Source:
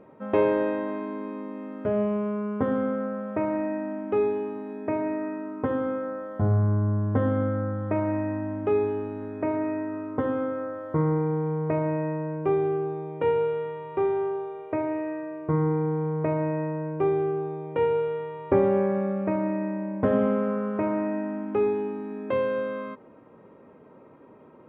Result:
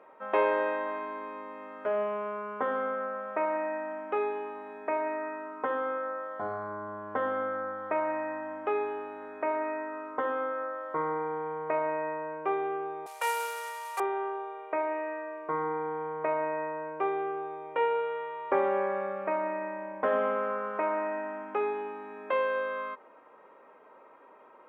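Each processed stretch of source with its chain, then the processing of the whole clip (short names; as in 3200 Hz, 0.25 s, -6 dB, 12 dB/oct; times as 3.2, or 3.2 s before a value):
13.06–14 CVSD 64 kbps + HPF 530 Hz 24 dB/oct + tilt +3.5 dB/oct
whole clip: HPF 930 Hz 12 dB/oct; high shelf 2400 Hz -9.5 dB; gain +7 dB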